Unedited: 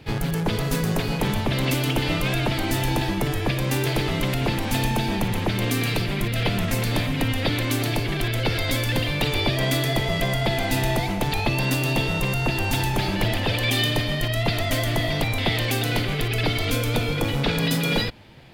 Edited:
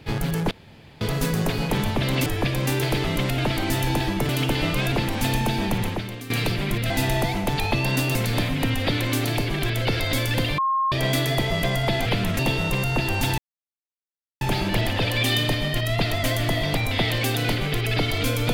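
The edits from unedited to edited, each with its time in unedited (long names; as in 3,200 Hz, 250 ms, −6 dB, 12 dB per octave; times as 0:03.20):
0:00.51: splice in room tone 0.50 s
0:01.76–0:02.39: swap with 0:03.30–0:04.42
0:05.34–0:05.80: fade out quadratic, to −14 dB
0:06.40–0:06.73: swap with 0:10.64–0:11.89
0:09.16–0:09.50: beep over 1,070 Hz −19 dBFS
0:12.88: splice in silence 1.03 s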